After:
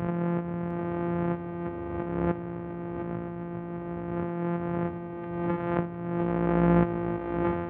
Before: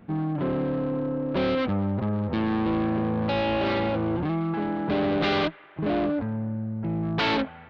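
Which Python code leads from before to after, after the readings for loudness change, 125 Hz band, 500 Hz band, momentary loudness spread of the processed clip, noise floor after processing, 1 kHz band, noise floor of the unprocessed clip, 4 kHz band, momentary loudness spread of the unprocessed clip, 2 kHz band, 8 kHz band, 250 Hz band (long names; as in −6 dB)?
−3.5 dB, −1.0 dB, −4.0 dB, 11 LU, −37 dBFS, −4.0 dB, −46 dBFS, below −20 dB, 5 LU, −8.5 dB, can't be measured, −3.5 dB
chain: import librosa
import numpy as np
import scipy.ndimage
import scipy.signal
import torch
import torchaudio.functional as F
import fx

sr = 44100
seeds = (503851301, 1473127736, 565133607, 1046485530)

y = np.r_[np.sort(x[:len(x) // 256 * 256].reshape(-1, 256), axis=1).ravel(), x[len(x) // 256 * 256:]]
y = y + 10.0 ** (-17.5 / 20.0) * np.pad(y, (int(79 * sr / 1000.0), 0))[:len(y)]
y = fx.cheby_harmonics(y, sr, harmonics=(3, 4, 5, 7), levels_db=(-11, -12, -10, -19), full_scale_db=-15.5)
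y = scipy.ndimage.gaussian_filter1d(y, 4.8, mode='constant')
y = fx.over_compress(y, sr, threshold_db=-34.0, ratio=-0.5)
y = scipy.signal.sosfilt(scipy.signal.butter(4, 81.0, 'highpass', fs=sr, output='sos'), y)
y = y + 10.0 ** (-9.0 / 20.0) * np.pad(y, (int(705 * sr / 1000.0), 0))[:len(y)]
y = fx.pre_swell(y, sr, db_per_s=42.0)
y = y * librosa.db_to_amplitude(7.0)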